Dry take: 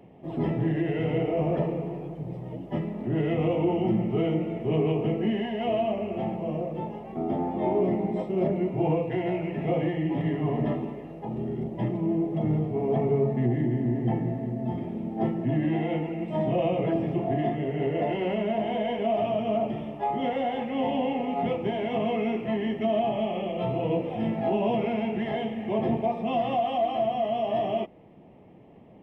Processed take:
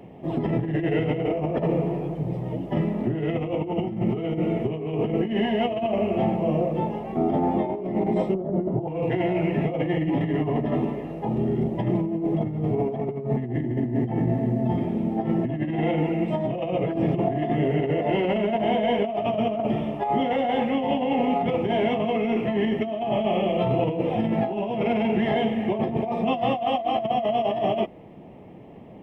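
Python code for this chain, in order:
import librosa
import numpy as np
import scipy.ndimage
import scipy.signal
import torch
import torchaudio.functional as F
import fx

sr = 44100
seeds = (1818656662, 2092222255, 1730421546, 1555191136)

y = fx.over_compress(x, sr, threshold_db=-28.0, ratio=-0.5)
y = fx.moving_average(y, sr, points=18, at=(8.34, 8.88))
y = y * librosa.db_to_amplitude(5.0)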